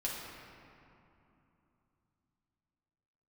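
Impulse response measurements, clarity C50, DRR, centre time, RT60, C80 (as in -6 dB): 0.0 dB, -5.5 dB, 0.122 s, 3.0 s, 1.5 dB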